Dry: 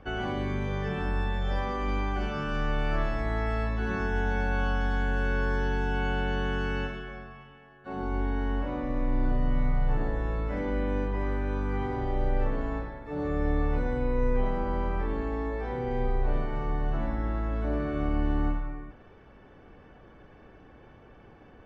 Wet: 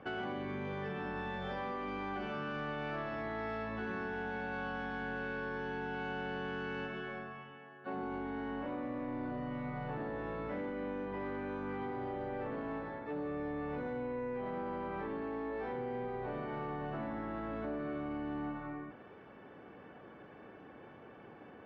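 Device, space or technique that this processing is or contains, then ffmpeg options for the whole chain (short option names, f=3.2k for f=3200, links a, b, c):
AM radio: -af "highpass=170,lowpass=3.3k,acompressor=threshold=-36dB:ratio=6,asoftclip=type=tanh:threshold=-31.5dB,volume=1dB"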